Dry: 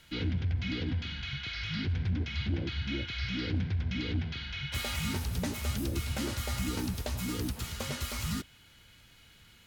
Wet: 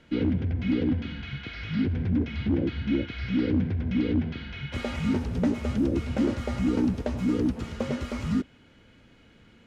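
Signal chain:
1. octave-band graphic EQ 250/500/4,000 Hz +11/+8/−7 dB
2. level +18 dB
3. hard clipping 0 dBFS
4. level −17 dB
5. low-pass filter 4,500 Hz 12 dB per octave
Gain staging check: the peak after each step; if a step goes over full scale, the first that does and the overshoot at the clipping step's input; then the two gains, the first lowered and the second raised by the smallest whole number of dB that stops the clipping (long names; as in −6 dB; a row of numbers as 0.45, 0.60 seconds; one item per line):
−14.5, +3.5, 0.0, −17.0, −17.0 dBFS
step 2, 3.5 dB
step 2 +14 dB, step 4 −13 dB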